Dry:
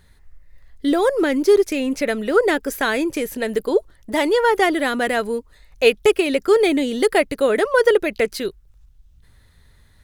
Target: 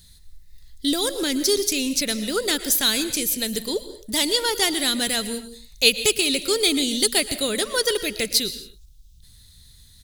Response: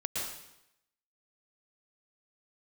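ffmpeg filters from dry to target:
-filter_complex "[0:a]firequalizer=gain_entry='entry(190,0);entry(360,-9);entry(590,-12);entry(1900,-7);entry(3800,12)':delay=0.05:min_phase=1,asplit=2[s0][s1];[1:a]atrim=start_sample=2205,afade=t=out:st=0.34:d=0.01,atrim=end_sample=15435[s2];[s1][s2]afir=irnorm=-1:irlink=0,volume=0.2[s3];[s0][s3]amix=inputs=2:normalize=0,volume=0.891"

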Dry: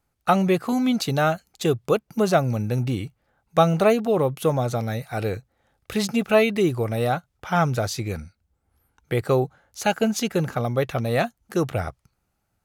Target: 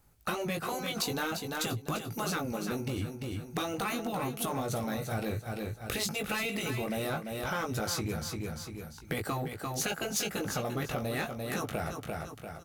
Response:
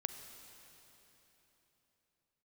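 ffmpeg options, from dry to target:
-filter_complex "[0:a]asplit=2[s0][s1];[s1]adelay=19,volume=0.531[s2];[s0][s2]amix=inputs=2:normalize=0,afftfilt=real='re*lt(hypot(re,im),0.501)':imag='im*lt(hypot(re,im),0.501)':win_size=1024:overlap=0.75,asplit=2[s3][s4];[s4]asoftclip=type=hard:threshold=0.0473,volume=0.708[s5];[s3][s5]amix=inputs=2:normalize=0,lowshelf=f=240:g=4,asplit=2[s6][s7];[s7]aecho=0:1:344|688|1032:0.376|0.109|0.0316[s8];[s6][s8]amix=inputs=2:normalize=0,acompressor=threshold=0.0178:ratio=3,highshelf=f=7500:g=7.5"

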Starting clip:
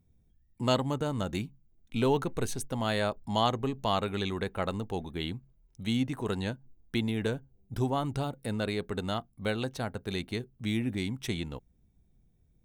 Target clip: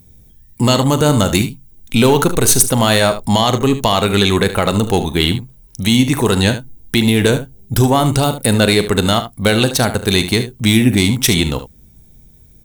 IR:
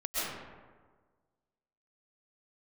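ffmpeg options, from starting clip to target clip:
-filter_complex "[0:a]alimiter=limit=0.075:level=0:latency=1:release=88,crystalizer=i=2.5:c=0,aeval=exprs='0.596*sin(PI/2*5.01*val(0)/0.596)':c=same,asplit=2[s0][s1];[s1]aecho=0:1:40|74:0.188|0.251[s2];[s0][s2]amix=inputs=2:normalize=0,volume=1.19"

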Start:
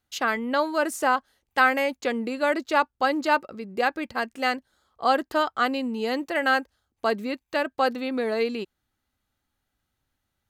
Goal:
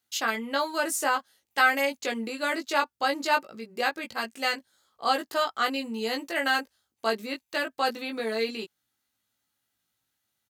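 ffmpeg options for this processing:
-filter_complex "[0:a]highpass=120,highshelf=f=2500:g=11.5,asplit=2[s0][s1];[s1]adelay=18,volume=0.708[s2];[s0][s2]amix=inputs=2:normalize=0,volume=0.447"

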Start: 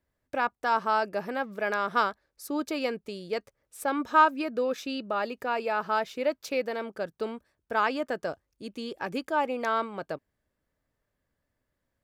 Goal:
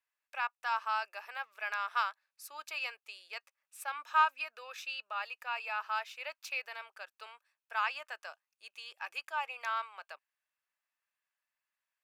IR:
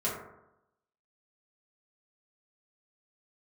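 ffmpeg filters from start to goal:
-af "highpass=f=910:w=0.5412,highpass=f=910:w=1.3066,equalizer=f=2600:w=6.1:g=10,volume=0.531"

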